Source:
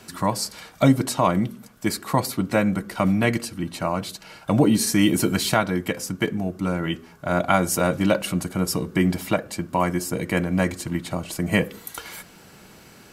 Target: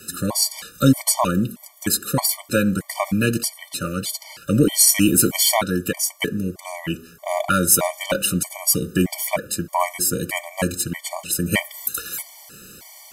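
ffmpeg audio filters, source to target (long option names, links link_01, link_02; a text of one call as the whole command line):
ffmpeg -i in.wav -af "aeval=exprs='0.562*(cos(1*acos(clip(val(0)/0.562,-1,1)))-cos(1*PI/2))+0.00891*(cos(6*acos(clip(val(0)/0.562,-1,1)))-cos(6*PI/2))':channel_layout=same,crystalizer=i=3:c=0,afftfilt=real='re*gt(sin(2*PI*1.6*pts/sr)*(1-2*mod(floor(b*sr/1024/600),2)),0)':imag='im*gt(sin(2*PI*1.6*pts/sr)*(1-2*mod(floor(b*sr/1024/600),2)),0)':win_size=1024:overlap=0.75,volume=2dB" out.wav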